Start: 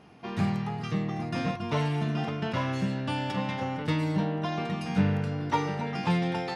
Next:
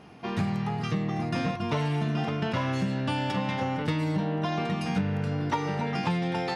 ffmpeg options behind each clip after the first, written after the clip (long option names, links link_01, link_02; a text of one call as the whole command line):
ffmpeg -i in.wav -af "acompressor=threshold=-28dB:ratio=6,volume=4dB" out.wav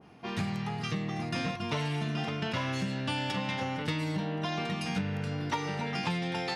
ffmpeg -i in.wav -af "adynamicequalizer=threshold=0.00447:dfrequency=1700:dqfactor=0.7:tfrequency=1700:tqfactor=0.7:attack=5:release=100:ratio=0.375:range=3.5:mode=boostabove:tftype=highshelf,volume=-5dB" out.wav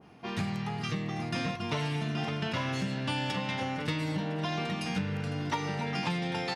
ffmpeg -i in.wav -af "aecho=1:1:504|1008|1512|2016|2520:0.158|0.0888|0.0497|0.0278|0.0156" out.wav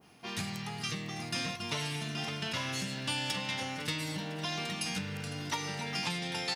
ffmpeg -i in.wav -af "crystalizer=i=5:c=0,volume=-6.5dB" out.wav